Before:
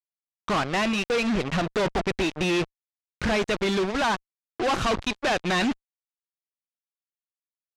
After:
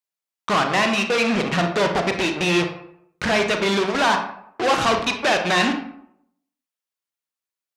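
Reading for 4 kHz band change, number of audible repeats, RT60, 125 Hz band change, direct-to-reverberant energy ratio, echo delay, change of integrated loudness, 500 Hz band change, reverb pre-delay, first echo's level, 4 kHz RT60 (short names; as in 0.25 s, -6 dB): +6.0 dB, none, 0.70 s, +3.0 dB, 4.5 dB, none, +5.0 dB, +4.5 dB, 31 ms, none, 0.40 s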